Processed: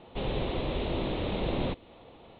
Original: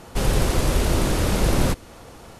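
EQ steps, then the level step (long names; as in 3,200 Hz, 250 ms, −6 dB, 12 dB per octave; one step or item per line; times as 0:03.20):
Butterworth low-pass 3,900 Hz 96 dB per octave
low-shelf EQ 180 Hz −10.5 dB
parametric band 1,500 Hz −12 dB 0.9 octaves
−4.5 dB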